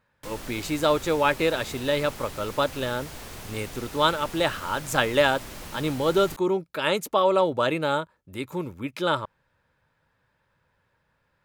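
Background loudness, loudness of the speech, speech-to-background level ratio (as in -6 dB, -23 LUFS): -40.0 LUFS, -25.5 LUFS, 14.5 dB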